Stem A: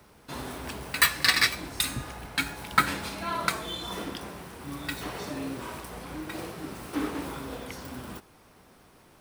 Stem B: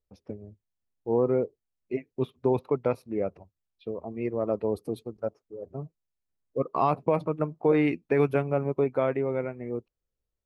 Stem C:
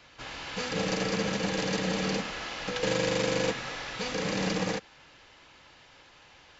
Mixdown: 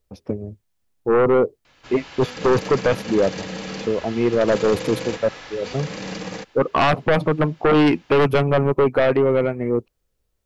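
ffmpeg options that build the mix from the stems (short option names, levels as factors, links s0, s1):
-filter_complex "[1:a]acontrast=85,aeval=exprs='0.531*sin(PI/2*2.51*val(0)/0.531)':c=same,volume=0.501[s0];[2:a]adelay=1650,volume=0.841[s1];[s0][s1]amix=inputs=2:normalize=0"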